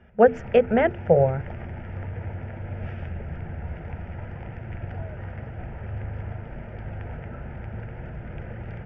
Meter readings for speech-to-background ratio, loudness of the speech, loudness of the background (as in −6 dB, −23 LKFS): 15.5 dB, −20.5 LKFS, −36.0 LKFS